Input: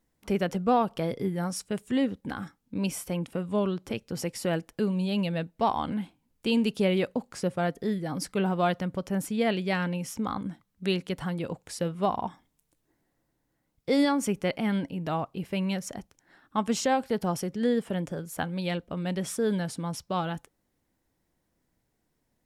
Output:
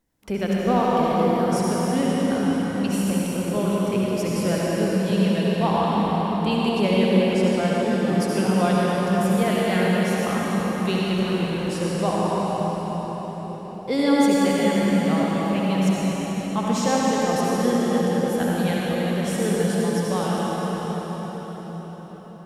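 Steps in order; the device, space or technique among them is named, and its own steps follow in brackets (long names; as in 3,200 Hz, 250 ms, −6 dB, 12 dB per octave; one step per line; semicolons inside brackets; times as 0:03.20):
cathedral (convolution reverb RT60 5.9 s, pre-delay 61 ms, DRR −6.5 dB)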